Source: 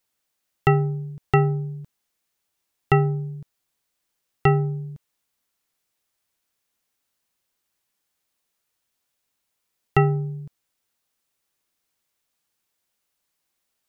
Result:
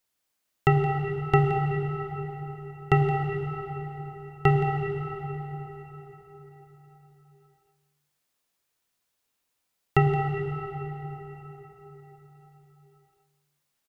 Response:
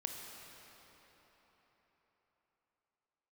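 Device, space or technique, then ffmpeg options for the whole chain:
cave: -filter_complex "[0:a]aecho=1:1:171:0.224[link_01];[1:a]atrim=start_sample=2205[link_02];[link_01][link_02]afir=irnorm=-1:irlink=0"

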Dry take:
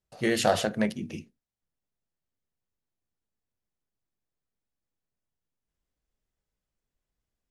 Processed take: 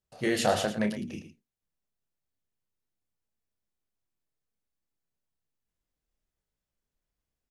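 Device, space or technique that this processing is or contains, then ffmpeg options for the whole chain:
slapback doubling: -filter_complex "[0:a]asplit=3[link_01][link_02][link_03];[link_02]adelay=29,volume=-8dB[link_04];[link_03]adelay=112,volume=-11dB[link_05];[link_01][link_04][link_05]amix=inputs=3:normalize=0,volume=-2.5dB"

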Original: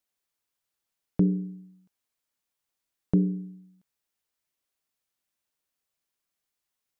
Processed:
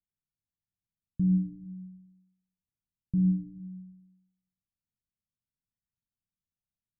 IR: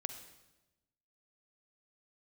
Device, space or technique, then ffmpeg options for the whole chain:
club heard from the street: -filter_complex "[0:a]alimiter=limit=-20.5dB:level=0:latency=1:release=133,lowpass=frequency=200:width=0.5412,lowpass=frequency=200:width=1.3066[link_01];[1:a]atrim=start_sample=2205[link_02];[link_01][link_02]afir=irnorm=-1:irlink=0,volume=6dB"

